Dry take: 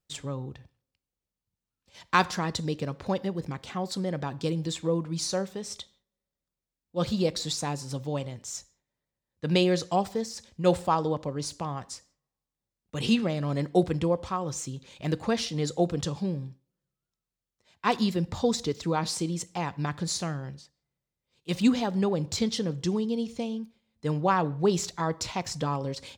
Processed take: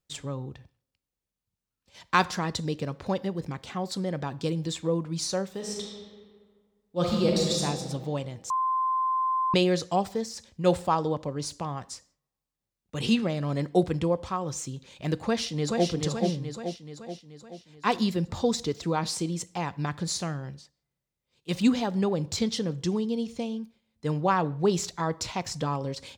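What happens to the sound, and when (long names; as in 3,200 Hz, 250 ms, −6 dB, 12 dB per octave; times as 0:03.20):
0:05.50–0:07.64: thrown reverb, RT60 1.8 s, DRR −1 dB
0:08.50–0:09.54: beep over 1,040 Hz −23 dBFS
0:15.25–0:15.89: delay throw 430 ms, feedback 55%, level −3.5 dB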